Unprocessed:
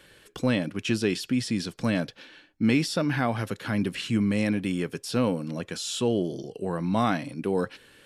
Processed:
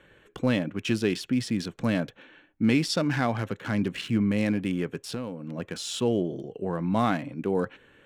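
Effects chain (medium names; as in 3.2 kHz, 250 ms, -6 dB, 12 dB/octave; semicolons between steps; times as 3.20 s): local Wiener filter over 9 samples; 2.89–3.97 s: dynamic bell 5.2 kHz, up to +7 dB, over -51 dBFS, Q 1.1; 5.09–5.58 s: compression 6:1, threshold -31 dBFS, peak gain reduction 11 dB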